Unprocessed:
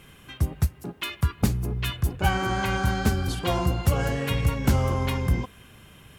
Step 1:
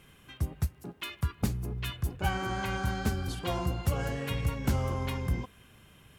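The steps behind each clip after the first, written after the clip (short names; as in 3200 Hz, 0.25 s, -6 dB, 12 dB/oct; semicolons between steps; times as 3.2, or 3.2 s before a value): crackle 29/s -48 dBFS; gain -7 dB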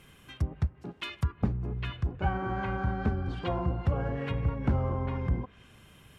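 treble ducked by the level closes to 1300 Hz, closed at -28 dBFS; gain +1.5 dB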